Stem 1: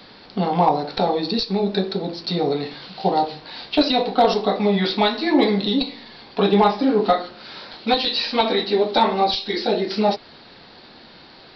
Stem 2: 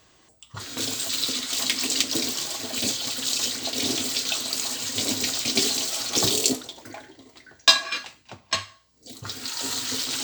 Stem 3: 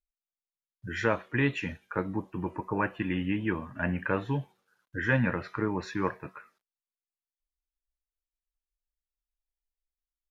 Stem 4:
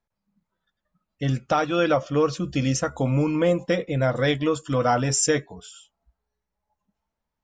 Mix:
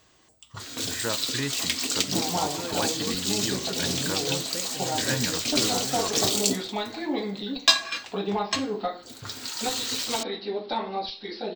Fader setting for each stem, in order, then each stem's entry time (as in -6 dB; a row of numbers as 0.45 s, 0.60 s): -12.0 dB, -2.5 dB, -4.5 dB, -15.5 dB; 1.75 s, 0.00 s, 0.00 s, 0.85 s